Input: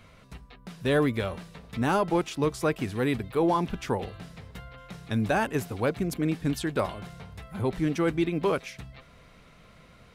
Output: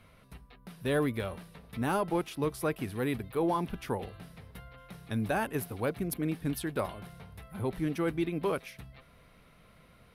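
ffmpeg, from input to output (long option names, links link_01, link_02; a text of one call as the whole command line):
ffmpeg -i in.wav -af "aexciter=amount=11.1:drive=6.3:freq=10000,adynamicsmooth=sensitivity=0.5:basefreq=7900,volume=-5dB" out.wav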